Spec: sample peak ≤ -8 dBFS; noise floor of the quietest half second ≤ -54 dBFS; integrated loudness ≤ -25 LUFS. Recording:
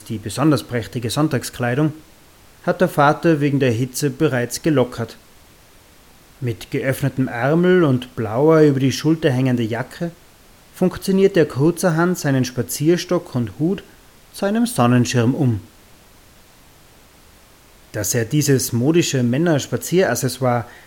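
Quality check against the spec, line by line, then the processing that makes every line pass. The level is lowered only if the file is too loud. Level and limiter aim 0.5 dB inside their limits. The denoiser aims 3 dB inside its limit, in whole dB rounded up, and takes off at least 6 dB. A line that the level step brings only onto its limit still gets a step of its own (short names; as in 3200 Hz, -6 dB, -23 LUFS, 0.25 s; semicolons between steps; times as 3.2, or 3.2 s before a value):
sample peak -2.5 dBFS: fail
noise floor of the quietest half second -48 dBFS: fail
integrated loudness -18.5 LUFS: fail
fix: gain -7 dB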